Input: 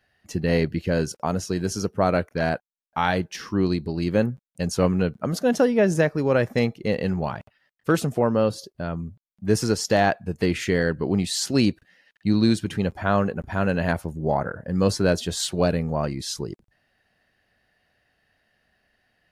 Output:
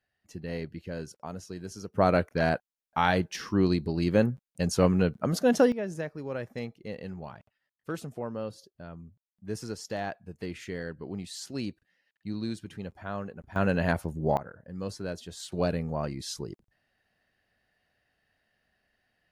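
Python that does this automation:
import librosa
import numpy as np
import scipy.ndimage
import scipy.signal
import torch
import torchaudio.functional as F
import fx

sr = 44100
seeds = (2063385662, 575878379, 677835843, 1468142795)

y = fx.gain(x, sr, db=fx.steps((0.0, -14.0), (1.94, -2.0), (5.72, -14.5), (13.56, -3.0), (14.37, -15.0), (15.52, -6.5)))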